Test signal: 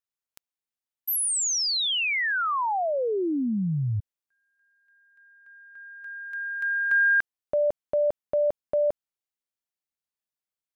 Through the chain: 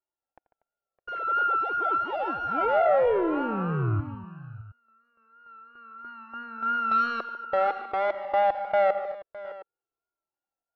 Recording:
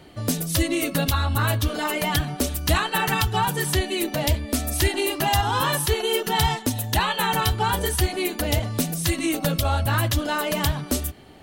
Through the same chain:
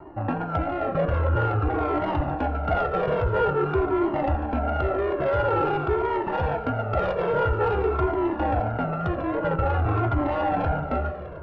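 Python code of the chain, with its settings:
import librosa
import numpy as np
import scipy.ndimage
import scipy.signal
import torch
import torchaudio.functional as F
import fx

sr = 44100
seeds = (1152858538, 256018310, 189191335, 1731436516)

p1 = np.r_[np.sort(x[:len(x) // 32 * 32].reshape(-1, 32), axis=1).ravel(), x[len(x) // 32 * 32:]]
p2 = scipy.signal.sosfilt(scipy.signal.butter(4, 1700.0, 'lowpass', fs=sr, output='sos'), p1)
p3 = fx.band_shelf(p2, sr, hz=530.0, db=11.5, octaves=1.7)
p4 = fx.over_compress(p3, sr, threshold_db=-22.0, ratio=-1.0)
p5 = p3 + F.gain(torch.from_numpy(p4), -1.5).numpy()
p6 = fx.vibrato(p5, sr, rate_hz=3.0, depth_cents=54.0)
p7 = 10.0 ** (-10.0 / 20.0) * np.tanh(p6 / 10.0 ** (-10.0 / 20.0))
p8 = p7 + fx.echo_multitap(p7, sr, ms=(86, 146, 240, 611, 714), db=(-17.5, -14.0, -19.0, -16.0, -18.5), dry=0)
p9 = fx.comb_cascade(p8, sr, direction='falling', hz=0.49)
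y = F.gain(torch.from_numpy(p9), -2.5).numpy()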